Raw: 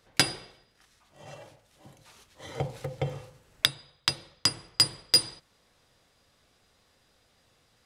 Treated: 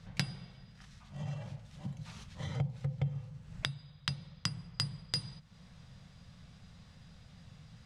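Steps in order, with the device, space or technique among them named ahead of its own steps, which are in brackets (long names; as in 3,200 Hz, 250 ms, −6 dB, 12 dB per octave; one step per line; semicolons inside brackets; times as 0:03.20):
jukebox (low-pass filter 6,700 Hz 12 dB per octave; low shelf with overshoot 240 Hz +11.5 dB, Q 3; downward compressor 3 to 1, threshold −42 dBFS, peak gain reduction 22 dB)
level +3.5 dB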